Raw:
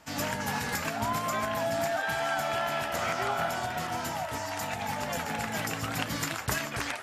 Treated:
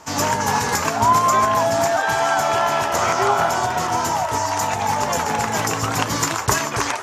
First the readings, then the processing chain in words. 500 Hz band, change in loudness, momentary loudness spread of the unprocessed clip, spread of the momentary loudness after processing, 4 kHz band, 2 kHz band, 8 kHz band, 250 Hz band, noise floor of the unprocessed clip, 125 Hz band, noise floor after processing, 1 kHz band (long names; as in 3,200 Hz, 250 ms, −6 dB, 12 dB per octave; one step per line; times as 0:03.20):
+11.0 dB, +12.0 dB, 4 LU, 5 LU, +9.0 dB, +8.5 dB, +14.0 dB, +9.0 dB, −37 dBFS, +10.0 dB, −26 dBFS, +14.0 dB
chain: graphic EQ with 15 bands 100 Hz +6 dB, 400 Hz +9 dB, 1,000 Hz +11 dB, 6,300 Hz +10 dB
level +6 dB